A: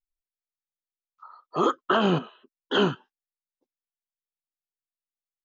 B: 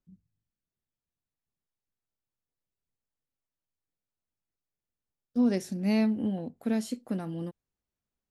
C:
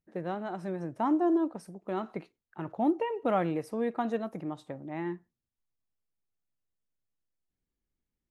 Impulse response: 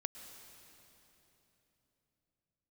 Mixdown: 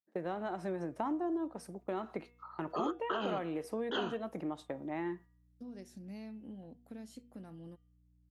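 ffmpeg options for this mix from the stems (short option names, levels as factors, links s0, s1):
-filter_complex "[0:a]adelay=1200,volume=0.708[s0];[1:a]acompressor=threshold=0.0316:ratio=6,aeval=exprs='val(0)+0.00224*(sin(2*PI*60*n/s)+sin(2*PI*2*60*n/s)/2+sin(2*PI*3*60*n/s)/3+sin(2*PI*4*60*n/s)/4+sin(2*PI*5*60*n/s)/5)':c=same,adelay=250,volume=0.211[s1];[2:a]agate=range=0.158:threshold=0.00398:ratio=16:detection=peak,volume=1.26[s2];[s0][s2]amix=inputs=2:normalize=0,highpass=210,acompressor=threshold=0.02:ratio=4,volume=1[s3];[s1][s3]amix=inputs=2:normalize=0,bandreject=f=239.7:t=h:w=4,bandreject=f=479.4:t=h:w=4,bandreject=f=719.1:t=h:w=4,bandreject=f=958.8:t=h:w=4,bandreject=f=1198.5:t=h:w=4,bandreject=f=1438.2:t=h:w=4,bandreject=f=1677.9:t=h:w=4,bandreject=f=1917.6:t=h:w=4,bandreject=f=2157.3:t=h:w=4,bandreject=f=2397:t=h:w=4,bandreject=f=2636.7:t=h:w=4,bandreject=f=2876.4:t=h:w=4,bandreject=f=3116.1:t=h:w=4,bandreject=f=3355.8:t=h:w=4,bandreject=f=3595.5:t=h:w=4"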